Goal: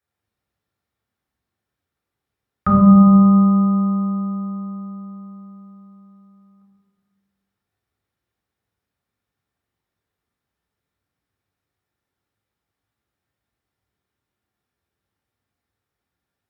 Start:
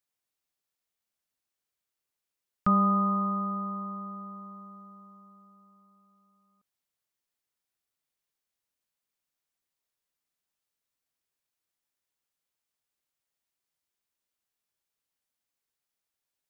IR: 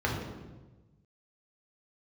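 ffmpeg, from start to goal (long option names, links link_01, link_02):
-filter_complex "[1:a]atrim=start_sample=2205,asetrate=39249,aresample=44100[link_01];[0:a][link_01]afir=irnorm=-1:irlink=0,volume=-1dB"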